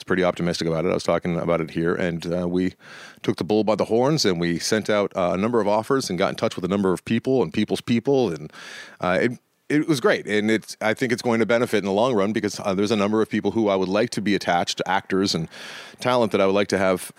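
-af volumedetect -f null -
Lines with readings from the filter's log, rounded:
mean_volume: -22.1 dB
max_volume: -5.1 dB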